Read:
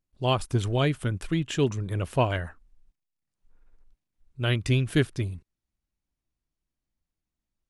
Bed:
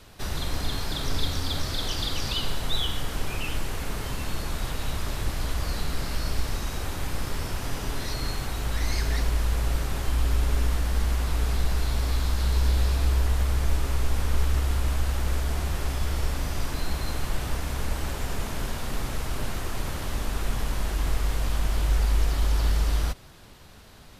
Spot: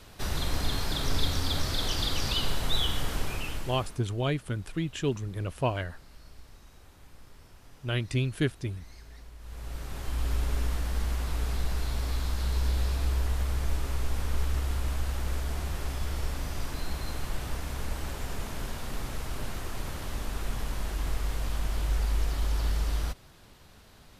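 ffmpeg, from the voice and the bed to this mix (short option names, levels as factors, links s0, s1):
-filter_complex "[0:a]adelay=3450,volume=0.596[s0];[1:a]volume=7.5,afade=t=out:st=3.1:d=0.92:silence=0.0749894,afade=t=in:st=9.39:d=0.93:silence=0.125893[s1];[s0][s1]amix=inputs=2:normalize=0"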